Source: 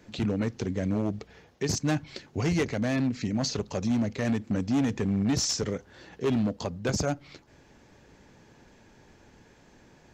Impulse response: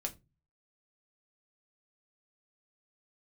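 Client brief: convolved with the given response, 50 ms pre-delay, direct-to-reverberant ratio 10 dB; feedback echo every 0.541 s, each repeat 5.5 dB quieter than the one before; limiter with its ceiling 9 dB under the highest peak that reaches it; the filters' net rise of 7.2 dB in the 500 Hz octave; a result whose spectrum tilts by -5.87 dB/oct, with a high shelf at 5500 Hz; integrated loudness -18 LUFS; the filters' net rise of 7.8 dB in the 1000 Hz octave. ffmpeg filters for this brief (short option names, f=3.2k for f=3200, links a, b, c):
-filter_complex "[0:a]equalizer=f=500:t=o:g=7,equalizer=f=1k:t=o:g=8,highshelf=f=5.5k:g=-8,alimiter=limit=-19.5dB:level=0:latency=1,aecho=1:1:541|1082|1623|2164|2705|3246|3787:0.531|0.281|0.149|0.079|0.0419|0.0222|0.0118,asplit=2[a][b];[1:a]atrim=start_sample=2205,adelay=50[c];[b][c]afir=irnorm=-1:irlink=0,volume=-10dB[d];[a][d]amix=inputs=2:normalize=0,volume=10.5dB"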